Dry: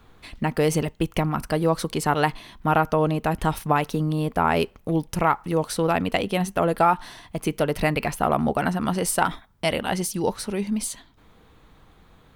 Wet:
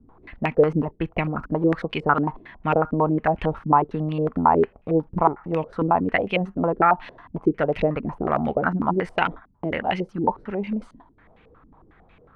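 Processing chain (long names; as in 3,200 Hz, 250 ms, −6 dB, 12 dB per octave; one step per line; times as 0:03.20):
low-pass on a step sequencer 11 Hz 270–2,500 Hz
level −2.5 dB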